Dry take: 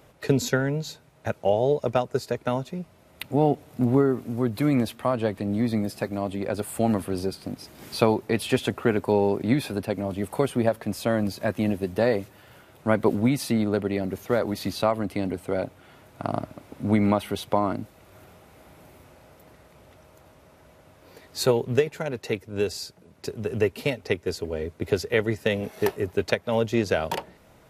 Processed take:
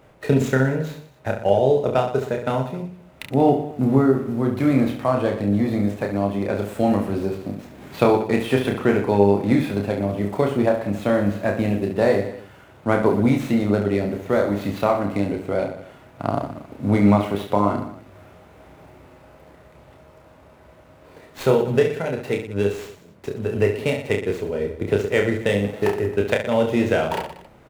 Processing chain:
running median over 9 samples
on a send: reverse bouncing-ball delay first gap 30 ms, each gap 1.3×, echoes 5
on the sum: level +2.5 dB

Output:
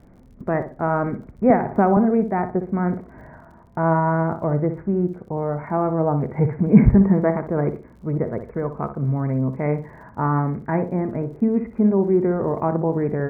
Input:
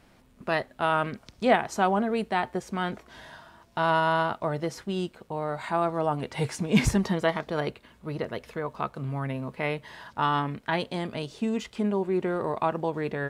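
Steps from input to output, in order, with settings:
Butterworth low-pass 2,300 Hz 96 dB per octave
tilt shelving filter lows +9 dB, about 880 Hz
surface crackle 48 per second −50 dBFS
feedback echo with a low-pass in the loop 61 ms, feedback 30%, low-pass 1,800 Hz, level −9 dB
0:01.50–0:01.97: multiband upward and downward compressor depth 100%
level +2 dB

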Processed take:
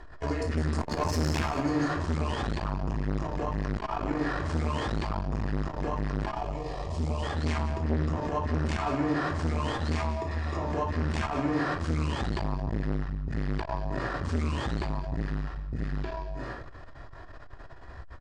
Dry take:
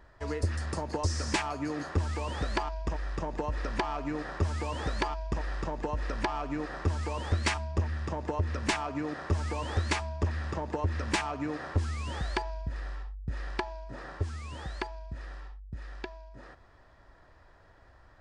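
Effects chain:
low-pass filter 8,500 Hz 12 dB per octave
mains-hum notches 60/120/180 Hz
compressor whose output falls as the input rises −34 dBFS, ratio −1
brickwall limiter −30.5 dBFS, peak gain reduction 10.5 dB
0:00.77–0:01.39: leveller curve on the samples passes 2
0:06.31–0:07.23: phaser with its sweep stopped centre 620 Hz, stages 4
0:09.97–0:10.63: notch comb filter 1,500 Hz
on a send: single-tap delay 178 ms −13.5 dB
on the sum: rectangular room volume 850 cubic metres, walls furnished, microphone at 3.3 metres
saturating transformer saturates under 400 Hz
level +6 dB

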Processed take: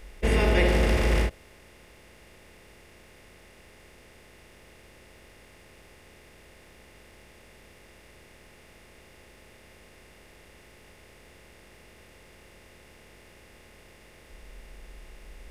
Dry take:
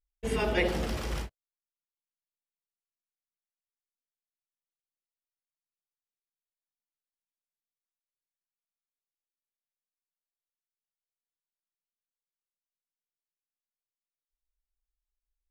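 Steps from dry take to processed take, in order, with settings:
compressor on every frequency bin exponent 0.4
low-shelf EQ 120 Hz +11 dB

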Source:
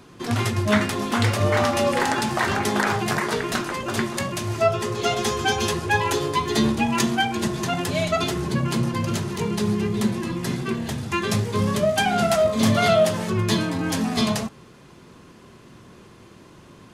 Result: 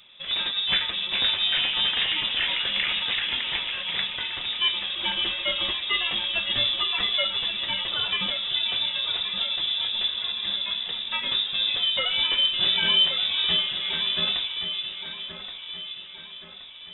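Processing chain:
delay that swaps between a low-pass and a high-pass 562 ms, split 1,300 Hz, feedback 69%, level −5.5 dB
voice inversion scrambler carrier 3,700 Hz
level −5 dB

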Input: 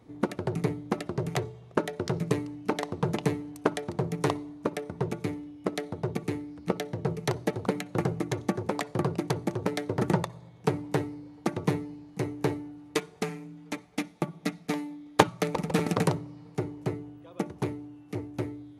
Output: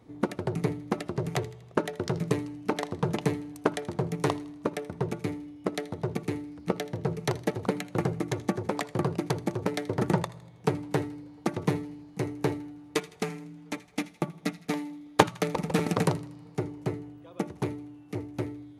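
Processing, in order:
delay with a high-pass on its return 80 ms, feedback 48%, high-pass 1,600 Hz, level −17 dB

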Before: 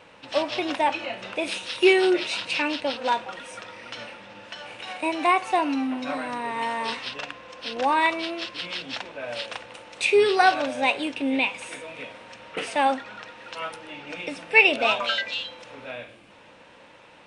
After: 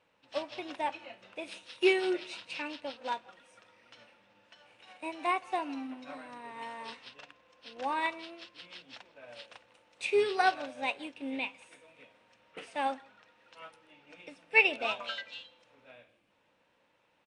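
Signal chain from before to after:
single-tap delay 163 ms −19.5 dB
expander for the loud parts 1.5 to 1, over −40 dBFS
level −6.5 dB

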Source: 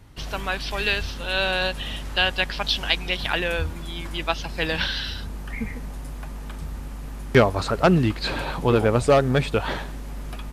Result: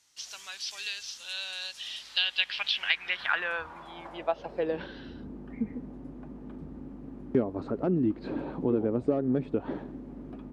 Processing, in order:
downward compressor 2.5 to 1, threshold −23 dBFS, peak gain reduction 8.5 dB
band-pass filter sweep 6,300 Hz → 290 Hz, 0:01.65–0:05.14
level +4.5 dB

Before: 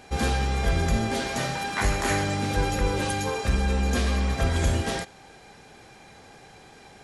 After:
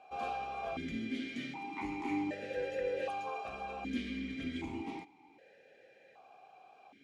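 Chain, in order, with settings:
formant filter that steps through the vowels 1.3 Hz

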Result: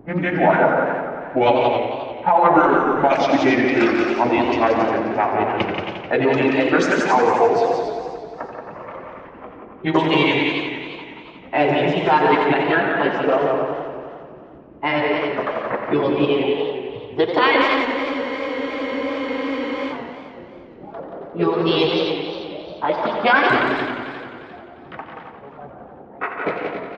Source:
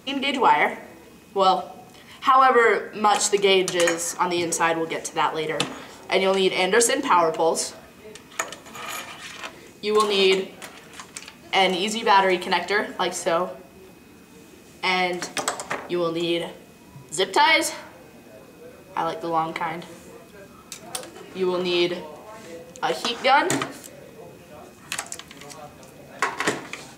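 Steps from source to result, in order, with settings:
pitch glide at a constant tempo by −8 semitones ending unshifted
reverb reduction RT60 0.65 s
RIAA equalisation playback
low-pass that shuts in the quiet parts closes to 630 Hz, open at −13 dBFS
three-way crossover with the lows and the highs turned down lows −16 dB, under 220 Hz, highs −24 dB, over 4,300 Hz
in parallel at +1 dB: brickwall limiter −16 dBFS, peak gain reduction 11 dB
on the sum: formants moved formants +3 semitones
reverb reduction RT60 2 s
on a send: multi-tap delay 142/179/281 ms −9.5/−5.5/−8 dB
on the sum: four-comb reverb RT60 1.5 s, combs from 33 ms, DRR 9.5 dB
frozen spectrum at 0:17.88, 2.03 s
feedback echo with a swinging delay time 88 ms, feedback 77%, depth 159 cents, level −9 dB
level −1.5 dB

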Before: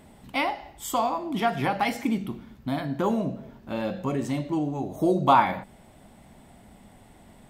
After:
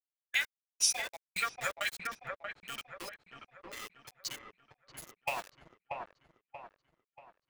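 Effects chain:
spectral dynamics exaggerated over time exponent 2
tilt shelving filter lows −9.5 dB, about 1,100 Hz
transient designer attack +4 dB, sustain −6 dB
in parallel at −0.5 dB: brickwall limiter −17.5 dBFS, peak gain reduction 11 dB
on the sum: downward compressor 16 to 1, threshold −23 dBFS, peak gain reduction 12 dB
guitar amp tone stack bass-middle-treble 10-0-10
centre clipping without the shift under −39 dBFS
formants moved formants −5 semitones
on a send: delay with a low-pass on its return 634 ms, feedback 40%, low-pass 1,600 Hz, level −3 dB

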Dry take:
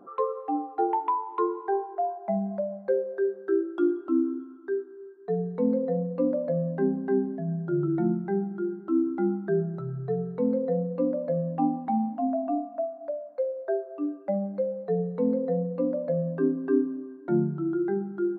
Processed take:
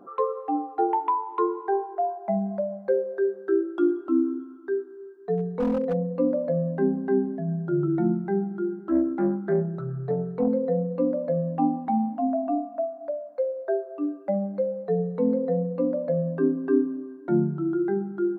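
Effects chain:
0:05.37–0:05.94: hard clipping −22 dBFS, distortion −26 dB
0:08.78–0:10.48: highs frequency-modulated by the lows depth 0.24 ms
level +2 dB

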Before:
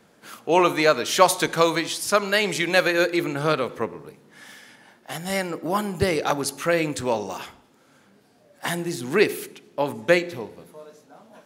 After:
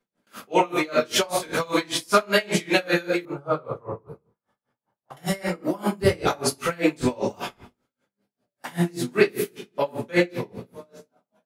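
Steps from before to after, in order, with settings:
mains-hum notches 50/100/150 Hz
rectangular room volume 54 cubic metres, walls mixed, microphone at 1.8 metres
downward compressor 6 to 1, threshold −9 dBFS, peak gain reduction 8 dB
0:03.25–0:05.17: drawn EQ curve 140 Hz 0 dB, 220 Hz −13 dB, 430 Hz −5 dB, 1,200 Hz −1 dB, 1,800 Hz −19 dB
noise gate with hold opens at −27 dBFS
tremolo with a sine in dB 5.1 Hz, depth 27 dB
level −2.5 dB

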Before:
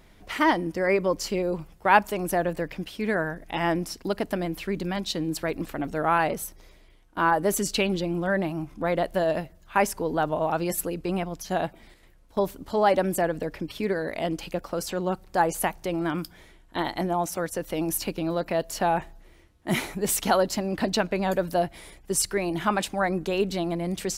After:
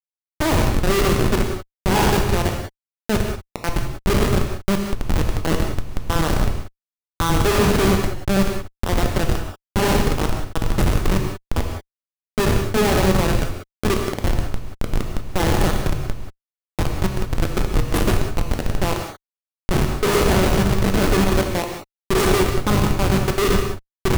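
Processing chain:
peak hold with a decay on every bin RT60 1.00 s
thirty-one-band graphic EQ 400 Hz +10 dB, 630 Hz −7 dB, 3,150 Hz −5 dB
in parallel at 0 dB: downward compressor 20 to 1, threshold −28 dBFS, peak gain reduction 18.5 dB
on the sum: comparator with hysteresis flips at −13.5 dBFS
reverb whose tail is shaped and stops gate 210 ms flat, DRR 2.5 dB
level +3 dB

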